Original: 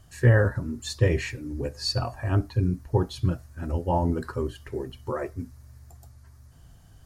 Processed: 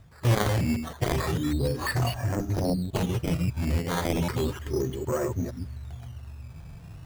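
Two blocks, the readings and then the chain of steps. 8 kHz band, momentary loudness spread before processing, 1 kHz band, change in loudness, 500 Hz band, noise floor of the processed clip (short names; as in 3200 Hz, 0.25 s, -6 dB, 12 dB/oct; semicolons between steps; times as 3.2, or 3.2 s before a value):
+3.5 dB, 13 LU, +0.5 dB, -1.0 dB, -1.0 dB, -45 dBFS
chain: reverse delay 0.153 s, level -9 dB; bell 170 Hz +6.5 dB 1.1 oct; added harmonics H 7 -11 dB, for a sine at -3.5 dBFS; reverse; compressor 4:1, threshold -29 dBFS, peak gain reduction 17.5 dB; reverse; harmonic-percussive split harmonic +8 dB; decimation with a swept rate 12×, swing 100% 0.34 Hz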